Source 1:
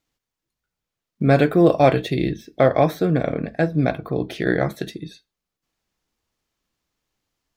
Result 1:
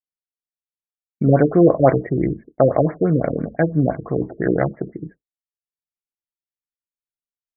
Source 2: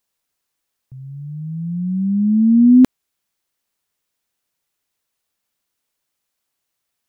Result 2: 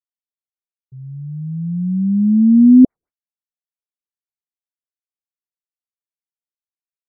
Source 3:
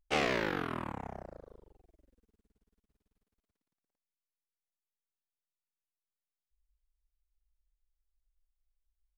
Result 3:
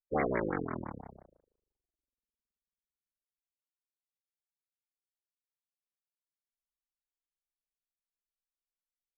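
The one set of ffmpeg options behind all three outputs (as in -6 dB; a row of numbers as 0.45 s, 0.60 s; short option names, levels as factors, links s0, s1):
-af "agate=range=0.0224:threshold=0.02:ratio=3:detection=peak,afftfilt=real='re*lt(b*sr/1024,520*pow(2400/520,0.5+0.5*sin(2*PI*5.9*pts/sr)))':imag='im*lt(b*sr/1024,520*pow(2400/520,0.5+0.5*sin(2*PI*5.9*pts/sr)))':win_size=1024:overlap=0.75,volume=1.26"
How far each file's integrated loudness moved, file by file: +1.5 LU, +2.0 LU, 0.0 LU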